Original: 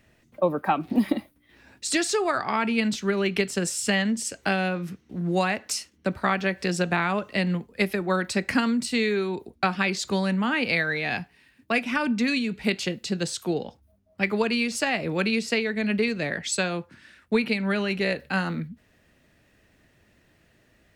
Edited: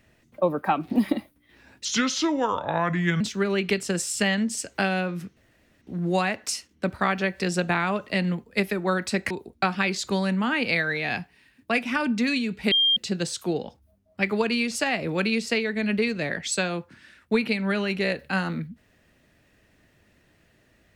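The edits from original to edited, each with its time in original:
0:01.85–0:02.88: play speed 76%
0:05.04: splice in room tone 0.45 s
0:08.53–0:09.31: remove
0:12.72–0:12.97: beep over 3,200 Hz −17 dBFS

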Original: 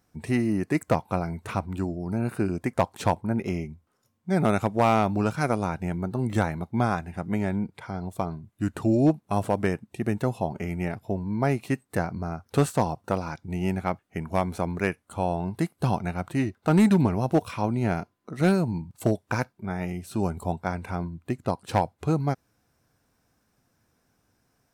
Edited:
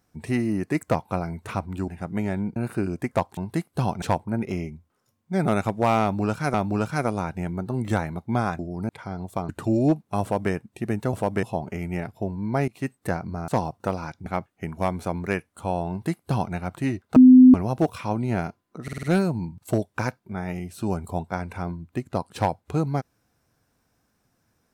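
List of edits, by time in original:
0:01.88–0:02.18: swap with 0:07.04–0:07.72
0:04.99–0:05.51: repeat, 2 plays
0:08.32–0:08.67: remove
0:09.40–0:09.70: duplicate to 0:10.31
0:11.56–0:11.86: fade in equal-power, from −20.5 dB
0:12.36–0:12.72: remove
0:13.50–0:13.79: remove
0:15.42–0:16.07: duplicate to 0:02.99
0:16.69–0:17.07: beep over 255 Hz −6.5 dBFS
0:18.36: stutter 0.05 s, 5 plays

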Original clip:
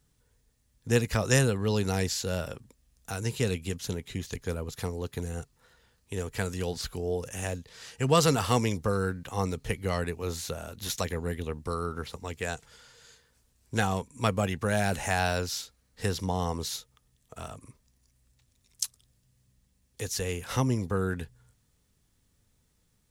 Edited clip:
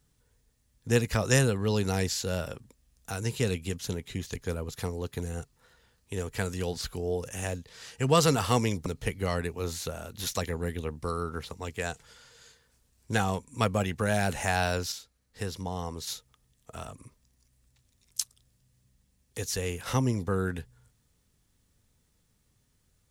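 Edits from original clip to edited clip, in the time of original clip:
0:08.86–0:09.49: remove
0:15.55–0:16.70: clip gain −5 dB

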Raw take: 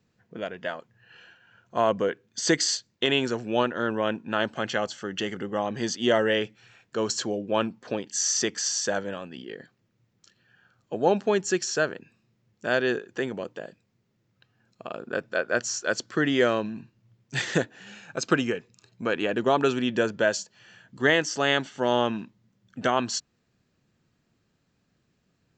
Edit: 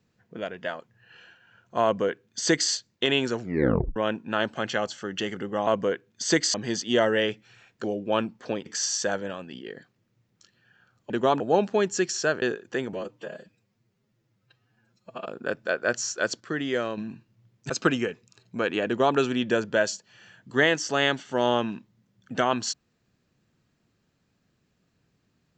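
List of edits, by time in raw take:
0:01.84–0:02.71: duplicate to 0:05.67
0:03.40: tape stop 0.56 s
0:06.97–0:07.26: remove
0:08.08–0:08.49: remove
0:11.95–0:12.86: remove
0:13.37–0:14.92: time-stretch 1.5×
0:16.07–0:16.64: clip gain −5.5 dB
0:17.36–0:18.16: remove
0:19.33–0:19.63: duplicate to 0:10.93

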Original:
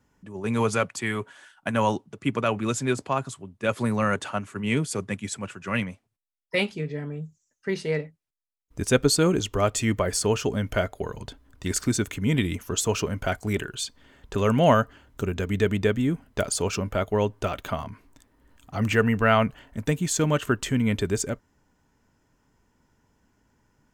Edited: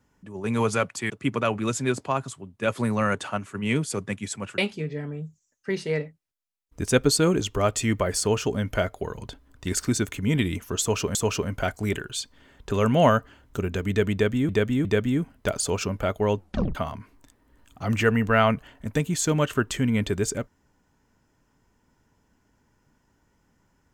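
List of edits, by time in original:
0:01.10–0:02.11: remove
0:05.59–0:06.57: remove
0:12.79–0:13.14: repeat, 2 plays
0:15.77–0:16.13: repeat, 3 plays
0:17.29: tape stop 0.38 s

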